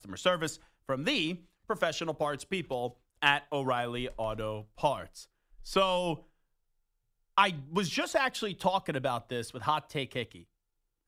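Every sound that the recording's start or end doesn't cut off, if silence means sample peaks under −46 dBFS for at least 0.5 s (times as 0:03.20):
0:07.38–0:10.42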